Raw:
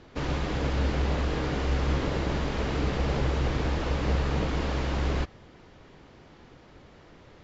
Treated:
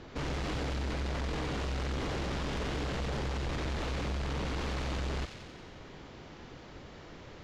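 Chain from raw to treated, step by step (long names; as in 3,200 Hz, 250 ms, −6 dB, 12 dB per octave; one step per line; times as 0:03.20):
in parallel at +0.5 dB: brickwall limiter −24.5 dBFS, peak gain reduction 9 dB
on the sum: soft clipping −29 dBFS, distortion −8 dB
delay with a high-pass on its return 91 ms, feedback 68%, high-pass 2,400 Hz, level −4 dB
level −3 dB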